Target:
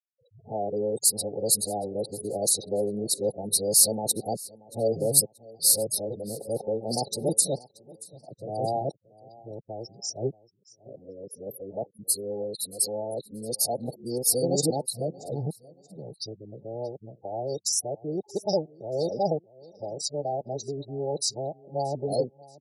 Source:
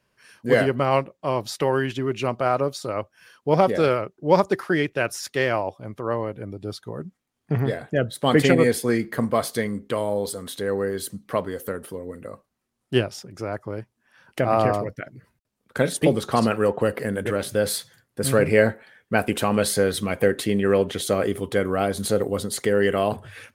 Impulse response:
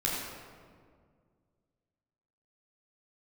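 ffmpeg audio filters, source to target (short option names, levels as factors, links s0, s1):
-filter_complex "[0:a]areverse,lowpass=12000,afftfilt=real='re*(1-between(b*sr/4096,840,3500))':imag='im*(1-between(b*sr/4096,840,3500))':win_size=4096:overlap=0.75,highpass=f=100:w=0.5412,highpass=f=100:w=1.3066,afftdn=nr=33:nf=-46,equalizer=f=240:t=o:w=0.53:g=-6,afftfilt=real='re*gte(hypot(re,im),0.0158)':imag='im*gte(hypot(re,im),0.0158)':win_size=1024:overlap=0.75,aexciter=amount=7.4:drive=3:freq=4200,asplit=2[s0][s1];[s1]aecho=0:1:656|1312:0.0794|0.0254[s2];[s0][s2]amix=inputs=2:normalize=0,asetrate=45938,aresample=44100,volume=0.447"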